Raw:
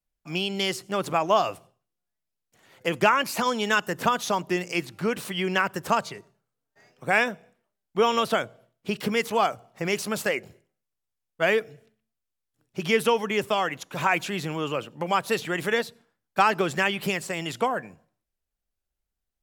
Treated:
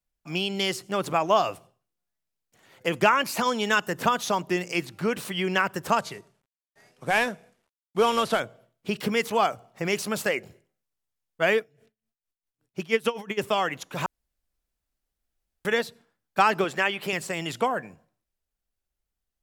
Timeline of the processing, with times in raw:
0:05.98–0:08.40: variable-slope delta modulation 64 kbit/s
0:11.53–0:13.37: tremolo with a sine in dB 3.2 Hz → 9.6 Hz, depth 19 dB
0:14.06–0:15.65: fill with room tone
0:16.64–0:17.13: bass and treble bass −10 dB, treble −5 dB

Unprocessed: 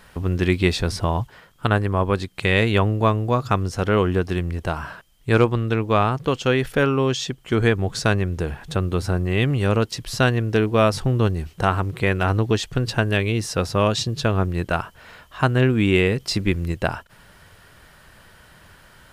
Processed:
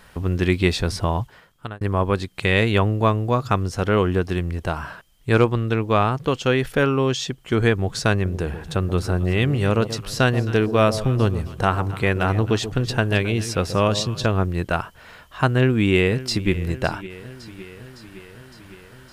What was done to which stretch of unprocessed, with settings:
0:01.02–0:01.81: fade out equal-power
0:08.12–0:14.26: delay that swaps between a low-pass and a high-pass 133 ms, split 880 Hz, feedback 54%, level −11 dB
0:15.53–0:16.50: delay throw 560 ms, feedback 70%, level −17 dB

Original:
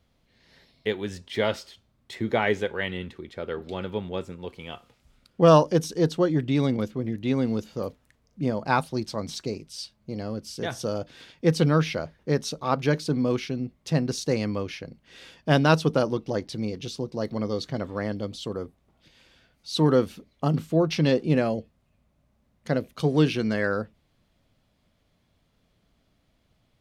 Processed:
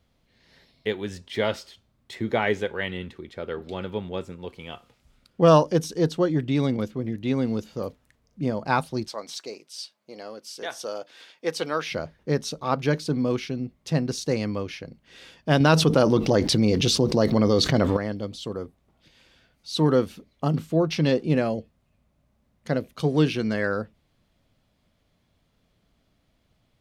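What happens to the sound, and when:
0:09.08–0:11.92: high-pass filter 510 Hz
0:15.60–0:17.97: envelope flattener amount 70%

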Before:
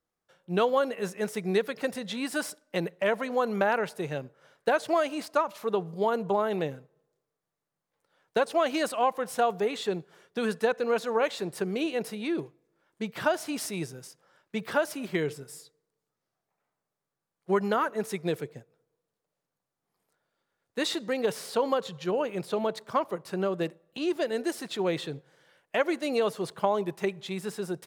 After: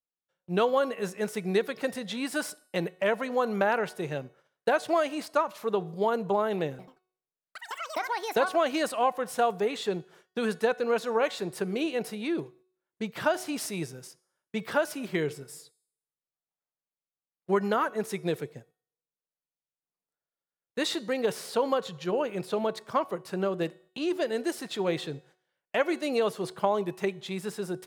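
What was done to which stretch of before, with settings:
0:06.70–0:09.20: delay with pitch and tempo change per echo 88 ms, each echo +6 semitones, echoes 3, each echo −6 dB
whole clip: noise gate −55 dBFS, range −19 dB; hum removal 369.8 Hz, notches 34

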